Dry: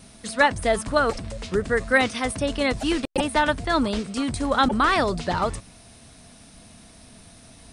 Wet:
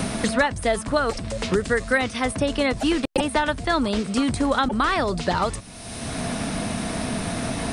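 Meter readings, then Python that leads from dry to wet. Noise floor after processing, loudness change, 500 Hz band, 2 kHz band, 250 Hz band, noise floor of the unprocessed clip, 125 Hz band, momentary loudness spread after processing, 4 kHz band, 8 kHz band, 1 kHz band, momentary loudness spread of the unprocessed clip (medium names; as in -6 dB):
-36 dBFS, -0.5 dB, +0.5 dB, -1.0 dB, +2.5 dB, -49 dBFS, +3.5 dB, 6 LU, +1.0 dB, +3.5 dB, -1.0 dB, 8 LU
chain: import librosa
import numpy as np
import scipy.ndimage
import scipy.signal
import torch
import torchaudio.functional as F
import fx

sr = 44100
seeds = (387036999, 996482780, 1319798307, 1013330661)

y = fx.band_squash(x, sr, depth_pct=100)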